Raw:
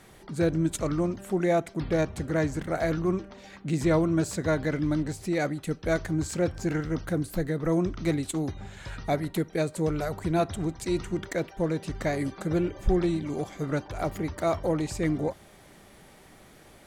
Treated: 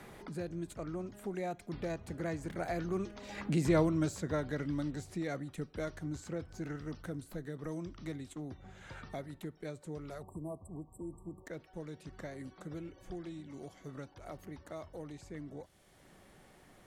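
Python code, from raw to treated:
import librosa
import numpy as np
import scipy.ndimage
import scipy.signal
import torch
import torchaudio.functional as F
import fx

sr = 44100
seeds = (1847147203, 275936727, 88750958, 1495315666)

y = fx.doppler_pass(x, sr, speed_mps=15, closest_m=2.9, pass_at_s=3.76)
y = fx.spec_erase(y, sr, start_s=10.22, length_s=1.24, low_hz=1200.0, high_hz=7500.0)
y = fx.band_squash(y, sr, depth_pct=70)
y = F.gain(torch.from_numpy(y), 8.0).numpy()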